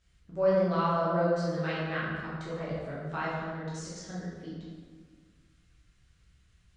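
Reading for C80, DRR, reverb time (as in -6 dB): 1.0 dB, -9.0 dB, 1.7 s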